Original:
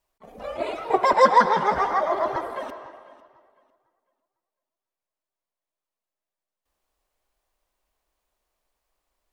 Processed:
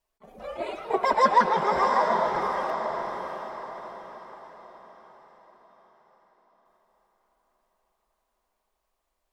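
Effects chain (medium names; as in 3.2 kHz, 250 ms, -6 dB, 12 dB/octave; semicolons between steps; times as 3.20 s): flange 0.94 Hz, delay 4.3 ms, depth 1.5 ms, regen -41%; echo that smears into a reverb 695 ms, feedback 43%, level -4 dB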